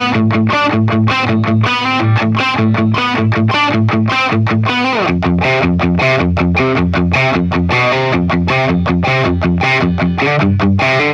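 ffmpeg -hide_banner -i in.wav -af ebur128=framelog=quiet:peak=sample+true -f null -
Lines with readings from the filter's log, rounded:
Integrated loudness:
  I:         -12.5 LUFS
  Threshold: -22.5 LUFS
Loudness range:
  LRA:         0.2 LU
  Threshold: -32.5 LUFS
  LRA low:   -12.6 LUFS
  LRA high:  -12.4 LUFS
Sample peak:
  Peak:       -1.4 dBFS
True peak:
  Peak:       -1.4 dBFS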